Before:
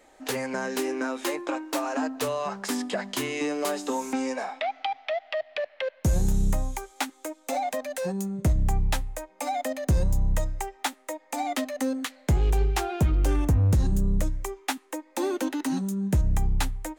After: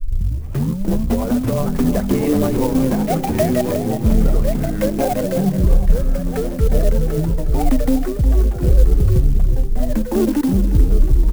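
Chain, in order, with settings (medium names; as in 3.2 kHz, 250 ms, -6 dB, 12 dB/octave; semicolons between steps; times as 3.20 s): tape start-up on the opening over 2.19 s; tilt EQ -4.5 dB/octave; level rider gain up to 14 dB; in parallel at +2 dB: peak limiter -8 dBFS, peak gain reduction 7.5 dB; on the sum: gate -27 dBFS, range -38 dB; rotary cabinet horn 7 Hz, later 0.7 Hz, at 13.45 s; tempo 1.5×; ever faster or slower copies 785 ms, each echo -3 st, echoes 3; on a send: feedback delay 362 ms, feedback 46%, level -11 dB; on the sum: sampling jitter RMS 0.05 ms; trim -9.5 dB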